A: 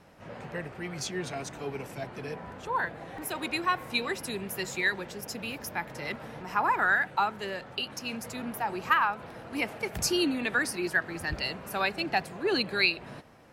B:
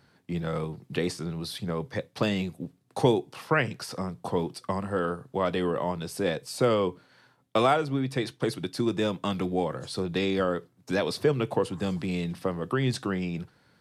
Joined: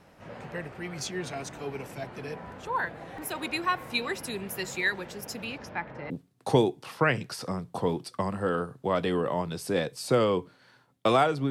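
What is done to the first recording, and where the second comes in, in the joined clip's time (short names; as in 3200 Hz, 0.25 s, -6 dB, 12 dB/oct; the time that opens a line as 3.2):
A
5.44–6.1 LPF 7500 Hz -> 1400 Hz
6.1 switch to B from 2.6 s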